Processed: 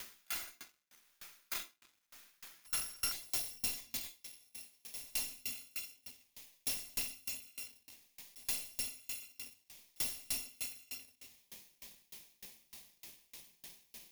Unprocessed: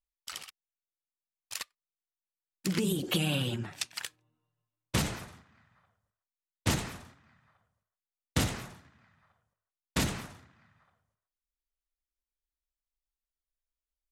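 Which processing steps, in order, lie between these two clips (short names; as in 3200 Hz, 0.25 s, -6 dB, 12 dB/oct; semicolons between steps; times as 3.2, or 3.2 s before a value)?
FFT order left unsorted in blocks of 256 samples; tilt +1.5 dB/oct; auto swell 0.382 s; reverb RT60 0.70 s, pre-delay 3 ms, DRR 7.5 dB; tube stage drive 39 dB, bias 0.55; upward compressor, threshold -58 dBFS; limiter -39.5 dBFS, peak gain reduction 4.5 dB; sample leveller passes 5; bell 1400 Hz +4 dB 0.59 oct, from 3.12 s -13.5 dB; dB-ramp tremolo decaying 3.3 Hz, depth 31 dB; gain +10 dB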